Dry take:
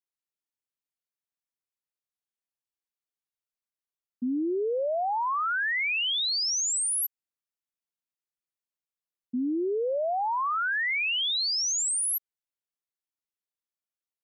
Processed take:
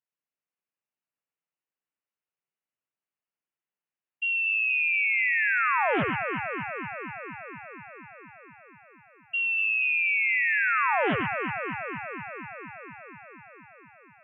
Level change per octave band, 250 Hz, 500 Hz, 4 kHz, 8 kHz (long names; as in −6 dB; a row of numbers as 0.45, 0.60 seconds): −4.0 dB, −3.5 dB, −15.0 dB, below −40 dB